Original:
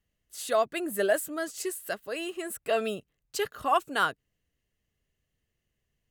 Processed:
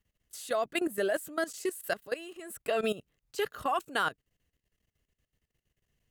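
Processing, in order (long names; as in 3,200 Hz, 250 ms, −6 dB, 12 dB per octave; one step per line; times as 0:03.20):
output level in coarse steps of 16 dB
level +4 dB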